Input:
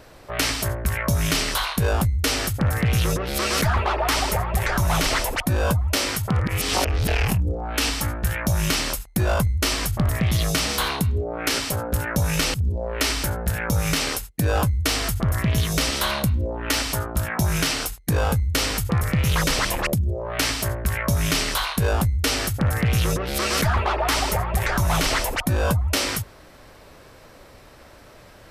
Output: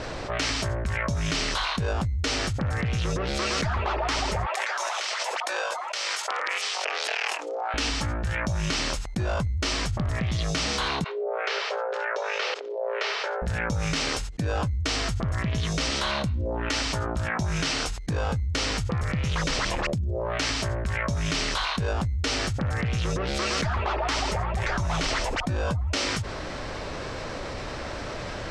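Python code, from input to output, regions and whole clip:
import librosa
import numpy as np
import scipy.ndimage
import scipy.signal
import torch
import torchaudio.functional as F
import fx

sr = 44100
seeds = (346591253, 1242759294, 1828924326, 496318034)

y = fx.chain(x, sr, fx.bessel_highpass(hz=810.0, order=8),
    fx.over_compress(threshold_db=-31.0, ratio=-1.0), at=(4.46, 7.74))
y = fx.chain(y, sr, fx.cheby1_highpass(hz=400.0, order=6),
    fx.air_absorb(metres=210.0), at=(11.04, 13.42))
y = scipy.signal.sosfilt(scipy.signal.butter(4, 7000.0, 'lowpass', fs=sr, output='sos'), y)
y = fx.env_flatten(y, sr, amount_pct=70)
y = y * librosa.db_to_amplitude(-7.5)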